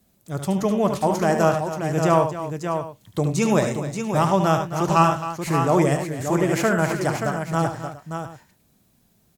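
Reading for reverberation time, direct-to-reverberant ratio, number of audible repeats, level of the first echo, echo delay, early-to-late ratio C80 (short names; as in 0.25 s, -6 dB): none, none, 4, -7.5 dB, 73 ms, none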